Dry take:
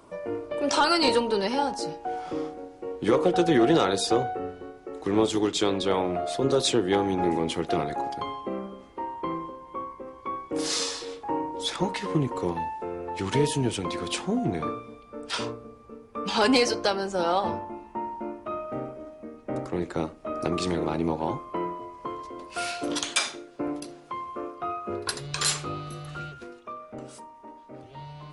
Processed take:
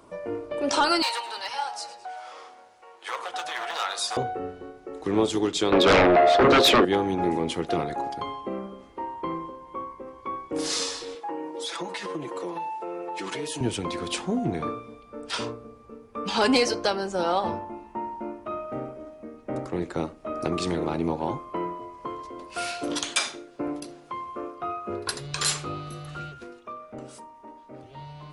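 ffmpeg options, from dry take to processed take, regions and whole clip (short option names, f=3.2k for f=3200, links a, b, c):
-filter_complex "[0:a]asettb=1/sr,asplit=3[a][b][c];[a]atrim=end=1.024[d];[b]atrim=start=1.02:end=4.17,asetpts=PTS-STARTPTS,afade=t=in:d=0.004:c=qsin,afade=t=out:st=3.146:d=0.004:c=qsin,asoftclip=type=hard:threshold=-16.5dB,highpass=f=820:w=0.5412,highpass=f=820:w=1.3066,asplit=5[e][f][g][h][i];[f]adelay=107,afreqshift=-120,volume=-15dB[j];[g]adelay=214,afreqshift=-240,volume=-21.4dB[k];[h]adelay=321,afreqshift=-360,volume=-27.8dB[l];[i]adelay=428,afreqshift=-480,volume=-34.1dB[m];[e][j][k][l][m]amix=inputs=5:normalize=0,atrim=end_sample=138915[n];[c]atrim=start=4.166[o];[d][n]acrossfade=d=0.004:c1=hsin:c2=qsin[p];[p][o]acrossfade=d=0.004:c1=qsin:c2=hsin,asettb=1/sr,asplit=3[q][r][s];[q]atrim=end=5.724[t];[r]atrim=start=5.72:end=6.85,asetpts=PTS-STARTPTS,afade=t=in:d=0.004:c=qsin,afade=t=out:st=1.126:d=0.004:c=qsin,highpass=320,lowpass=2.9k,aeval=exprs='0.224*sin(PI/2*3.98*val(0)/0.224)':c=same[u];[s]atrim=start=6.846[v];[t][u]acrossfade=d=0.004:c1=hsin:c2=qsin[w];[w][v]acrossfade=d=0.004:c1=qsin:c2=hsin,asettb=1/sr,asplit=3[x][y][z];[x]atrim=end=11.154[aa];[y]atrim=start=11.15:end=13.61,asetpts=PTS-STARTPTS,afade=t=in:d=0.004:c=qsin,afade=t=out:st=2.456:d=0.004:c=qsin,highpass=340,aecho=1:1:6:0.83,atrim=end_sample=108486,acompressor=threshold=-29dB:ratio=4:attack=3.2:release=140:knee=1:detection=peak[ab];[z]atrim=start=13.606[ac];[aa][ab]acrossfade=d=0.004:c1=hsin:c2=qsin[ad];[ad][ac]acrossfade=d=0.004:c1=qsin:c2=hsin"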